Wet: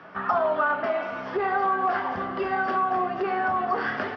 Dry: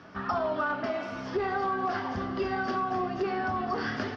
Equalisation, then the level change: three-band isolator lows -20 dB, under 450 Hz, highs -18 dB, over 3.1 kHz; peaking EQ 170 Hz +8.5 dB 0.66 oct; bass shelf 370 Hz +6 dB; +6.0 dB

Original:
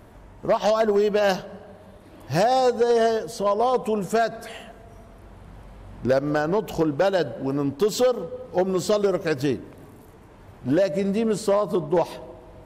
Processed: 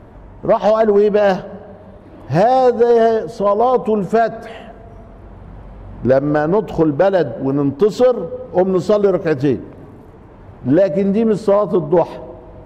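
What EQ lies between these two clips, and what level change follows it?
low-pass 1.2 kHz 6 dB/octave; +8.5 dB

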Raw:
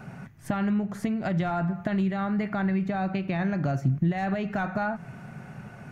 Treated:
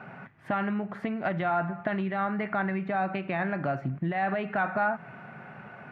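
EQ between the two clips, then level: high-pass 920 Hz 6 dB/octave; distance through air 500 m; +8.5 dB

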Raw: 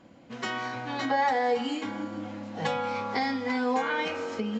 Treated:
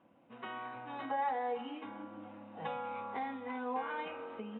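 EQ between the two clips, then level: high-pass 150 Hz 6 dB/octave; rippled Chebyshev low-pass 3.8 kHz, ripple 6 dB; distance through air 290 m; -6.0 dB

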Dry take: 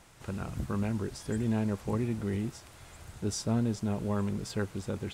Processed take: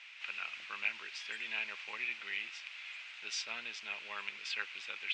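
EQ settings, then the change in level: Gaussian low-pass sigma 1.7 samples; resonant high-pass 2.5 kHz, resonance Q 4.3; distance through air 69 m; +7.5 dB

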